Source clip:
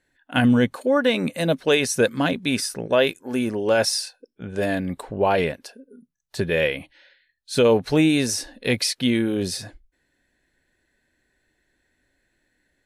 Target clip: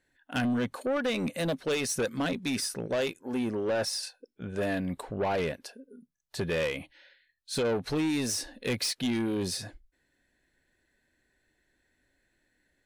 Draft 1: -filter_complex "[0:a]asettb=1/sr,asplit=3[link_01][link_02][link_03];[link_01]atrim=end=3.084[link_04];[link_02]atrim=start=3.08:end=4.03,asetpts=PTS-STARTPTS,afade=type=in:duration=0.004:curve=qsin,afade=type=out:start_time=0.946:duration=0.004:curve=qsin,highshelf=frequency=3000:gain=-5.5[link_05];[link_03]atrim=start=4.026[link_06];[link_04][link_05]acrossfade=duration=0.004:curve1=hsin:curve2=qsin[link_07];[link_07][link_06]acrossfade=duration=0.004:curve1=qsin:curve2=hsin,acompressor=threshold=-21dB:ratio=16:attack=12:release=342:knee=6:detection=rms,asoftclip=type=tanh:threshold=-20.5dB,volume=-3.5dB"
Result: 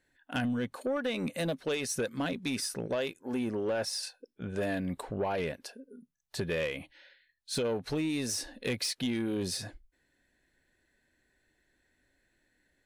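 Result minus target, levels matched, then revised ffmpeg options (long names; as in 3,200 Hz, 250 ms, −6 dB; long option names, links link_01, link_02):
downward compressor: peak gain reduction +6.5 dB
-filter_complex "[0:a]asettb=1/sr,asplit=3[link_01][link_02][link_03];[link_01]atrim=end=3.084[link_04];[link_02]atrim=start=3.08:end=4.03,asetpts=PTS-STARTPTS,afade=type=in:duration=0.004:curve=qsin,afade=type=out:start_time=0.946:duration=0.004:curve=qsin,highshelf=frequency=3000:gain=-5.5[link_05];[link_03]atrim=start=4.026[link_06];[link_04][link_05]acrossfade=duration=0.004:curve1=hsin:curve2=qsin[link_07];[link_07][link_06]acrossfade=duration=0.004:curve1=qsin:curve2=hsin,acompressor=threshold=-13dB:ratio=16:attack=12:release=342:knee=6:detection=rms,asoftclip=type=tanh:threshold=-20.5dB,volume=-3.5dB"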